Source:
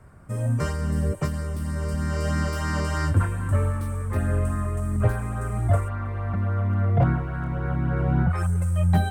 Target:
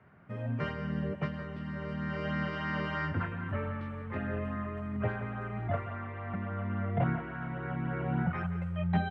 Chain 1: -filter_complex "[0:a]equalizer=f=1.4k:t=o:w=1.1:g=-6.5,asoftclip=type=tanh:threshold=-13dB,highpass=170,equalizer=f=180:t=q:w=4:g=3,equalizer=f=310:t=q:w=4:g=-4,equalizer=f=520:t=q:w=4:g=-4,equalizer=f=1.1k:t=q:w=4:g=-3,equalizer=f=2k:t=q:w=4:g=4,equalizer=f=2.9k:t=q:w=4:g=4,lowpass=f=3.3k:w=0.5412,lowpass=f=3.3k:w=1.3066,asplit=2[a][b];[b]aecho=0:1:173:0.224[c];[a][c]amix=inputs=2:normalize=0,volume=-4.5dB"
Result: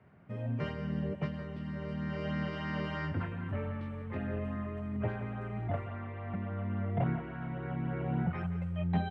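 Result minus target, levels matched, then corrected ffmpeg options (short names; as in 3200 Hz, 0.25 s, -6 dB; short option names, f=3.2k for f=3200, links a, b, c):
soft clip: distortion +13 dB; 1000 Hz band -2.5 dB
-filter_complex "[0:a]asoftclip=type=tanh:threshold=-5dB,highpass=170,equalizer=f=180:t=q:w=4:g=3,equalizer=f=310:t=q:w=4:g=-4,equalizer=f=520:t=q:w=4:g=-4,equalizer=f=1.1k:t=q:w=4:g=-3,equalizer=f=2k:t=q:w=4:g=4,equalizer=f=2.9k:t=q:w=4:g=4,lowpass=f=3.3k:w=0.5412,lowpass=f=3.3k:w=1.3066,asplit=2[a][b];[b]aecho=0:1:173:0.224[c];[a][c]amix=inputs=2:normalize=0,volume=-4.5dB"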